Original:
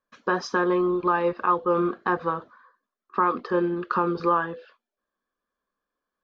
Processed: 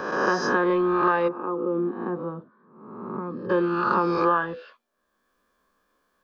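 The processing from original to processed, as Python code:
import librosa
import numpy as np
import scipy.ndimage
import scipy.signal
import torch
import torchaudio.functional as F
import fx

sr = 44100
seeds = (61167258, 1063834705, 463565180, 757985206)

y = fx.spec_swells(x, sr, rise_s=0.9)
y = fx.bandpass_q(y, sr, hz=fx.line((1.27, 320.0), (3.49, 130.0)), q=1.6, at=(1.27, 3.49), fade=0.02)
y = fx.band_squash(y, sr, depth_pct=40)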